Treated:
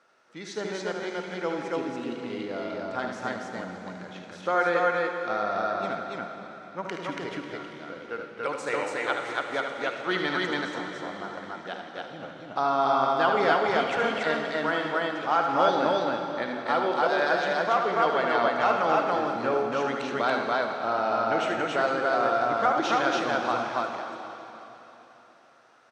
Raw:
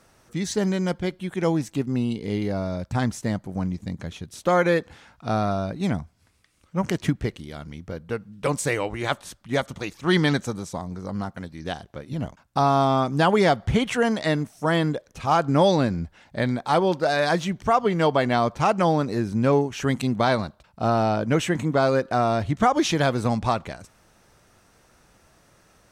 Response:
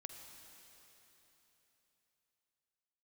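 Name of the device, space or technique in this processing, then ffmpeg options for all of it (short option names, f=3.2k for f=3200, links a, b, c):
station announcement: -filter_complex "[0:a]highpass=380,lowpass=4.4k,equalizer=f=1.4k:t=o:w=0.21:g=8.5,aecho=1:1:75.8|282.8:0.447|0.891[a];[1:a]atrim=start_sample=2205[b];[a][b]afir=irnorm=-1:irlink=0"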